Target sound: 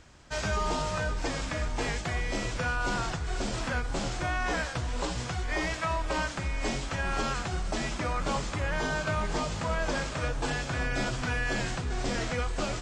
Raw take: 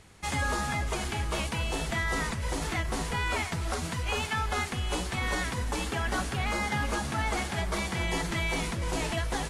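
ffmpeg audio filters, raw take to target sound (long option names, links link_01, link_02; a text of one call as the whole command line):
ffmpeg -i in.wav -af "asetrate=32667,aresample=44100" out.wav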